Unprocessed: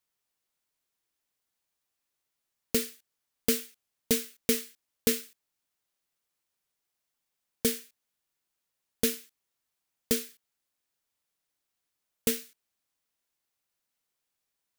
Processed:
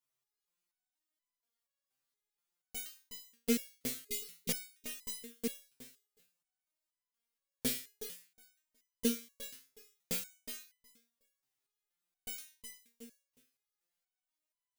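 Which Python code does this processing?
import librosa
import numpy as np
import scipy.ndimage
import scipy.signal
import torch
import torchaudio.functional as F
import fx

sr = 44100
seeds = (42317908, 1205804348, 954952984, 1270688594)

y = fx.spec_repair(x, sr, seeds[0], start_s=3.86, length_s=0.44, low_hz=420.0, high_hz=2000.0, source='both')
y = fx.echo_feedback(y, sr, ms=366, feedback_pct=17, wet_db=-5.5)
y = fx.resonator_held(y, sr, hz=4.2, low_hz=130.0, high_hz=1000.0)
y = F.gain(torch.from_numpy(y), 5.5).numpy()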